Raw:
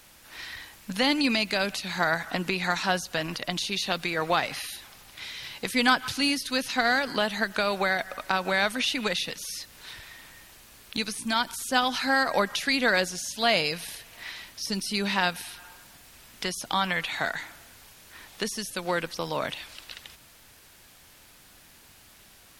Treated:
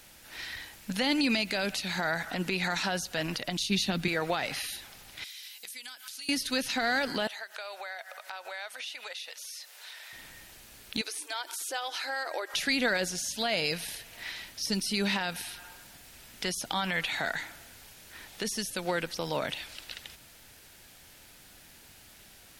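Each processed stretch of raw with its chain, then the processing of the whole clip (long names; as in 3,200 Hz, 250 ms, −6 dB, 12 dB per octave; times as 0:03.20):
0:03.57–0:04.08: low shelf with overshoot 360 Hz +7.5 dB, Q 1.5 + multiband upward and downward expander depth 100%
0:05.24–0:06.29: first difference + downward compressor 16 to 1, threshold −38 dBFS
0:07.27–0:10.13: high-pass filter 560 Hz 24 dB per octave + downward compressor 2.5 to 1, threshold −42 dBFS
0:11.01–0:12.54: downward compressor 2.5 to 1, threshold −33 dBFS + linear-phase brick-wall high-pass 290 Hz
whole clip: brickwall limiter −17.5 dBFS; parametric band 1,100 Hz −6 dB 0.32 octaves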